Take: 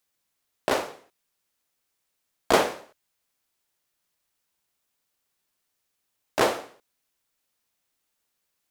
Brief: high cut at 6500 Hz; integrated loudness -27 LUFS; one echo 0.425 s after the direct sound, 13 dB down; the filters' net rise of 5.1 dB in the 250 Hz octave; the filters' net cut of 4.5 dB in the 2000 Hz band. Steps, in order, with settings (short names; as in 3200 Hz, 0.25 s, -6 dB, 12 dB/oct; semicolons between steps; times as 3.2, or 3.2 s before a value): LPF 6500 Hz; bell 250 Hz +7 dB; bell 2000 Hz -6 dB; echo 0.425 s -13 dB; gain +0.5 dB